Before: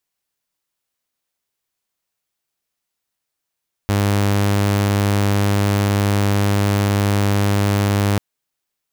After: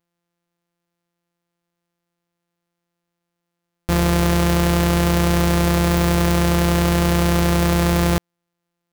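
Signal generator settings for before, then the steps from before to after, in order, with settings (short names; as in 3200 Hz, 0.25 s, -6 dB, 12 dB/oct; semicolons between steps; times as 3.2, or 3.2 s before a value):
tone saw 101 Hz -12 dBFS 4.29 s
sample sorter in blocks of 256 samples; high shelf 10000 Hz +4.5 dB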